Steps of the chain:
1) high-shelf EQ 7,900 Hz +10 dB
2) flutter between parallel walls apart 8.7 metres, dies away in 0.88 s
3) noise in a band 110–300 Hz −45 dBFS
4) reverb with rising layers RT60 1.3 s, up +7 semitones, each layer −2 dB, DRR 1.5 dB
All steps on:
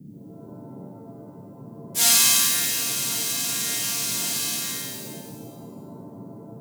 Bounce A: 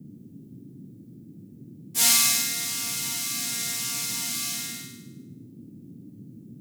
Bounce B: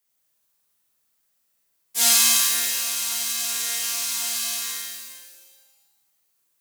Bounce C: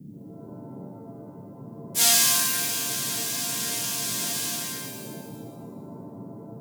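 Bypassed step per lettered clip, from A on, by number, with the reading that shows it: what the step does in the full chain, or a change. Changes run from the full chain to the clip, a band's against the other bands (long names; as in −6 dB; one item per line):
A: 4, 500 Hz band −6.0 dB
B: 3, 250 Hz band −11.0 dB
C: 2, change in momentary loudness spread +5 LU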